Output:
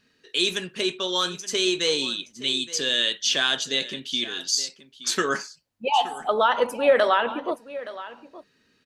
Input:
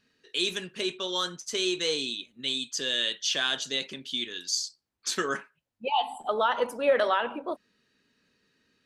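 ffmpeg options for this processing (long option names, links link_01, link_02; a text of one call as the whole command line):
ffmpeg -i in.wav -af "aecho=1:1:871:0.158,volume=5dB" out.wav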